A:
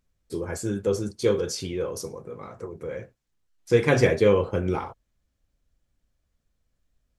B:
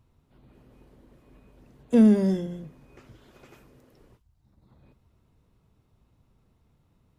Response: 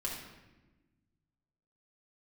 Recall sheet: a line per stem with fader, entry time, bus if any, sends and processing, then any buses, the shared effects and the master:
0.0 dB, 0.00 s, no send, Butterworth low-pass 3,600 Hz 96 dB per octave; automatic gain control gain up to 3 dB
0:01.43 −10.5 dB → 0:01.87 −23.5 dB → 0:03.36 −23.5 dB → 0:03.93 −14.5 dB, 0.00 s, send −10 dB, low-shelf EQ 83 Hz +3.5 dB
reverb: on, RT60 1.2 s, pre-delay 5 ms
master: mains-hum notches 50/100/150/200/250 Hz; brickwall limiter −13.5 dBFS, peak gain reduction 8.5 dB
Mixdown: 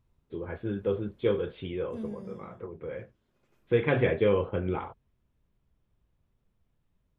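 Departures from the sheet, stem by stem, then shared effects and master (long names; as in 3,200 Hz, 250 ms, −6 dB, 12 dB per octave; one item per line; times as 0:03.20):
stem A 0.0 dB → −7.0 dB
master: missing mains-hum notches 50/100/150/200/250 Hz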